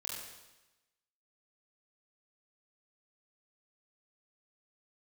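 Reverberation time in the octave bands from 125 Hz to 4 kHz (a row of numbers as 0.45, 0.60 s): 1.1, 1.1, 1.0, 1.1, 1.0, 1.0 s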